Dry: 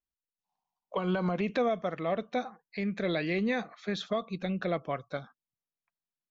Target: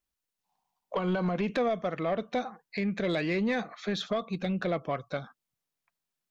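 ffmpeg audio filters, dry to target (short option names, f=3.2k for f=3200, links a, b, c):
-filter_complex "[0:a]asplit=2[a][b];[b]acompressor=threshold=-39dB:ratio=6,volume=2dB[c];[a][c]amix=inputs=2:normalize=0,asoftclip=type=tanh:threshold=-20.5dB"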